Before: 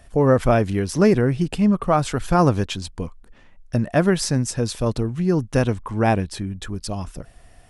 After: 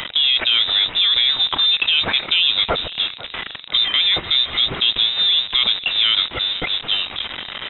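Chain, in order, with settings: jump at every zero crossing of -26 dBFS; high-pass 320 Hz 6 dB/octave; peak limiter -14 dBFS, peak gain reduction 8.5 dB; in parallel at +3 dB: compressor with a negative ratio -24 dBFS, ratio -1; on the sum: frequency inversion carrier 3.8 kHz; on a send: frequency-shifting echo 496 ms, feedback 38%, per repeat +50 Hz, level -18 dB

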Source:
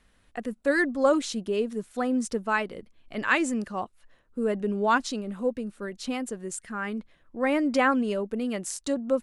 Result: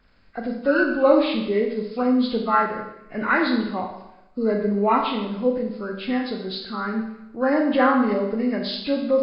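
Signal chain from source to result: knee-point frequency compression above 1.1 kHz 1.5:1; Schroeder reverb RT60 0.87 s, combs from 28 ms, DRR 2.5 dB; trim +3.5 dB

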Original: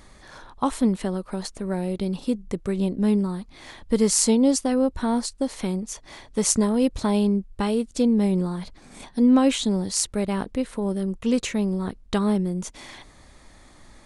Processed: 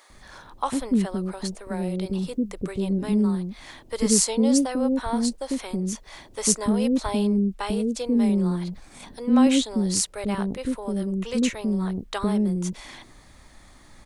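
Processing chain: bands offset in time highs, lows 100 ms, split 470 Hz; word length cut 12-bit, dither none

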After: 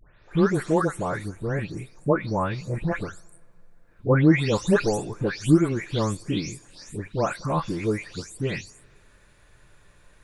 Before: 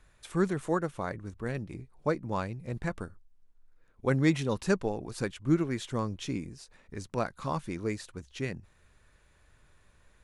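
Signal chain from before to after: delay that grows with frequency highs late, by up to 315 ms; on a send: reverberation, pre-delay 3 ms, DRR 20 dB; on the sum: trim +8 dB

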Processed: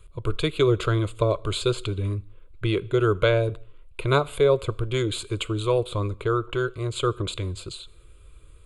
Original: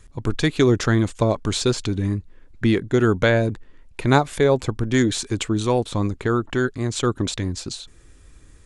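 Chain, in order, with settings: static phaser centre 1.2 kHz, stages 8; on a send: reverberation, pre-delay 3 ms, DRR 20 dB

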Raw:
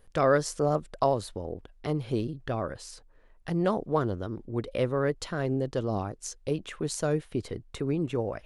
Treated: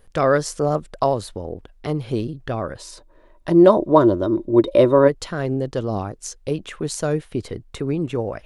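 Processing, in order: 2.78–5.07 s: small resonant body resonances 340/590/970/3700 Hz, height 13 dB -> 17 dB, ringing for 45 ms; trim +5.5 dB

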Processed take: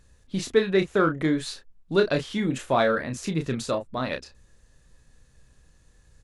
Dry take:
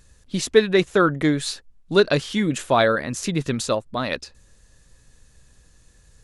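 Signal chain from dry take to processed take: treble shelf 3.6 kHz -6.5 dB; in parallel at -11.5 dB: saturation -18 dBFS, distortion -8 dB; on the sum: doubling 31 ms -7 dB; trim -5.5 dB

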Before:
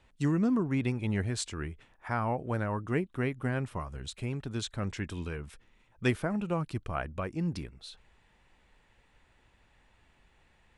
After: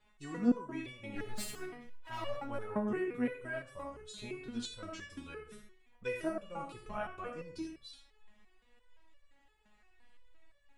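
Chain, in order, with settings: 1.15–2.49 s: comb filter that takes the minimum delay 7.3 ms; algorithmic reverb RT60 0.51 s, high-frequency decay 0.6×, pre-delay 25 ms, DRR 3.5 dB; resonator arpeggio 5.8 Hz 210–570 Hz; trim +8 dB

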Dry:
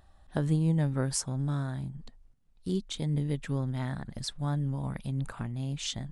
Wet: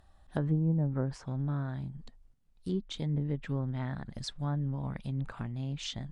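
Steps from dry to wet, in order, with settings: low-pass that closes with the level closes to 700 Hz, closed at -22.5 dBFS; trim -2 dB

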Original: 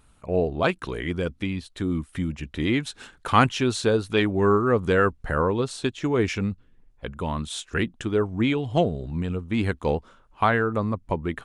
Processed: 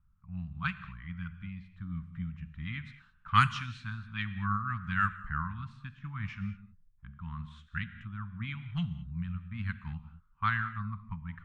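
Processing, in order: Chebyshev band-stop 180–1200 Hz, order 3; level-controlled noise filter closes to 760 Hz, open at -16 dBFS; gated-style reverb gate 240 ms flat, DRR 10.5 dB; upward expansion 1.5:1, over -31 dBFS; trim -1.5 dB

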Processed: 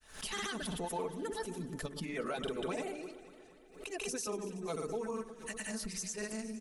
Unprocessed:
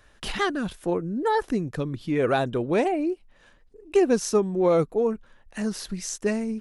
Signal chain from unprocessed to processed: treble shelf 8 kHz +9 dB; comb 4.6 ms, depth 80%; de-hum 48.05 Hz, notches 11; harmonic-percussive split harmonic -12 dB; treble shelf 3.8 kHz +8.5 dB; peak limiter -23 dBFS, peak gain reduction 16 dB; granulator, pitch spread up and down by 0 st; on a send: echo whose repeats swap between lows and highs 118 ms, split 1.6 kHz, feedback 77%, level -13 dB; on the sum: swell ahead of each attack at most 120 dB/s; trim -5 dB

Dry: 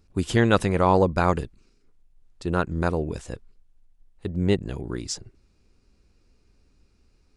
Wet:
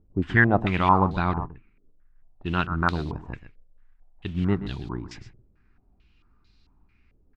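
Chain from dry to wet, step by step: peaking EQ 510 Hz -14.5 dB 0.69 oct; modulation noise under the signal 24 dB; 1.11–2.46 s: distance through air 460 m; delay 127 ms -13.5 dB; on a send at -19.5 dB: reverberation, pre-delay 7 ms; on the sum: step-sequenced low-pass 4.5 Hz 530–4000 Hz

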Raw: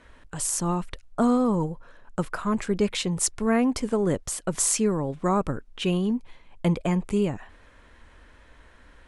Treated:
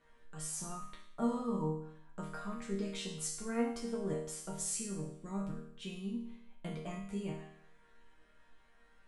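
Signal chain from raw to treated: 4.57–6.15 s: peaking EQ 970 Hz -10.5 dB 2.1 oct; chord resonator D#3 major, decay 0.68 s; trim +7 dB

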